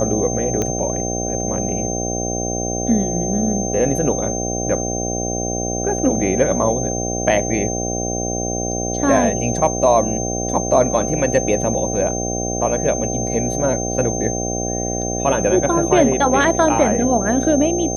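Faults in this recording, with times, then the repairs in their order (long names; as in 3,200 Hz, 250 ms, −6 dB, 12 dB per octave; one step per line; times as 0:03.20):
mains buzz 60 Hz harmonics 13 −24 dBFS
whistle 6,300 Hz −25 dBFS
0:00.62: click −8 dBFS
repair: click removal
notch filter 6,300 Hz, Q 30
hum removal 60 Hz, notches 13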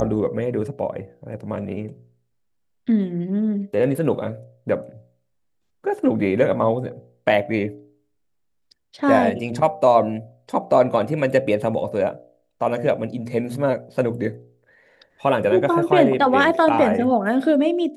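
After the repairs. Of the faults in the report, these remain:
none of them is left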